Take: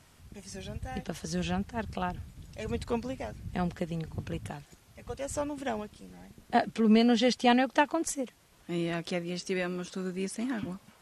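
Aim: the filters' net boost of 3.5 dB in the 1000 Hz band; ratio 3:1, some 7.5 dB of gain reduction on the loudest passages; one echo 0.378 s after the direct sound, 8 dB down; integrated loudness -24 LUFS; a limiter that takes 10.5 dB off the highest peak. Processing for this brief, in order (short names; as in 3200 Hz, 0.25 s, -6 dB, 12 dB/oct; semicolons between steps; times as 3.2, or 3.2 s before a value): bell 1000 Hz +5 dB; compressor 3:1, threshold -27 dBFS; limiter -26 dBFS; echo 0.378 s -8 dB; gain +12.5 dB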